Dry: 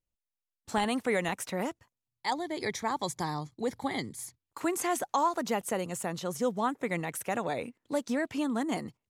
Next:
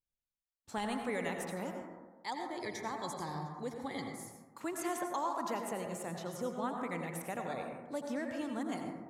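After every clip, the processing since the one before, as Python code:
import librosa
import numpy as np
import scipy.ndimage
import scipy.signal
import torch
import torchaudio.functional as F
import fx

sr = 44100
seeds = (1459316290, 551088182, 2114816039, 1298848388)

y = fx.rev_plate(x, sr, seeds[0], rt60_s=1.3, hf_ratio=0.25, predelay_ms=75, drr_db=2.5)
y = F.gain(torch.from_numpy(y), -9.0).numpy()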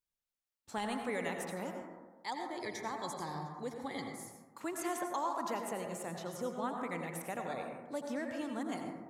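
y = fx.low_shelf(x, sr, hz=150.0, db=-4.5)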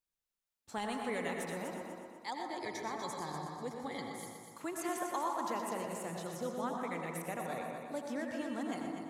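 y = fx.echo_heads(x, sr, ms=122, heads='first and second', feedback_pct=47, wet_db=-10.0)
y = F.gain(torch.from_numpy(y), -1.0).numpy()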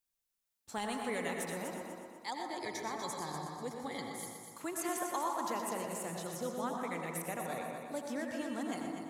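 y = fx.high_shelf(x, sr, hz=5600.0, db=6.5)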